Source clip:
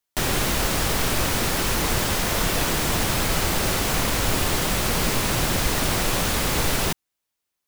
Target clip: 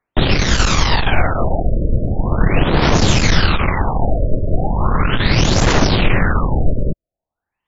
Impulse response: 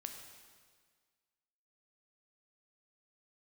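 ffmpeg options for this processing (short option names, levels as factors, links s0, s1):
-af "aphaser=in_gain=1:out_gain=1:delay=1.6:decay=0.54:speed=0.35:type=triangular,aeval=exprs='0.631*(cos(1*acos(clip(val(0)/0.631,-1,1)))-cos(1*PI/2))+0.1*(cos(4*acos(clip(val(0)/0.631,-1,1)))-cos(4*PI/2))+0.0794*(cos(5*acos(clip(val(0)/0.631,-1,1)))-cos(5*PI/2))+0.02*(cos(8*acos(clip(val(0)/0.631,-1,1)))-cos(8*PI/2))':c=same,afftfilt=real='re*lt(b*sr/1024,620*pow(7600/620,0.5+0.5*sin(2*PI*0.4*pts/sr)))':imag='im*lt(b*sr/1024,620*pow(7600/620,0.5+0.5*sin(2*PI*0.4*pts/sr)))':win_size=1024:overlap=0.75,volume=1.41"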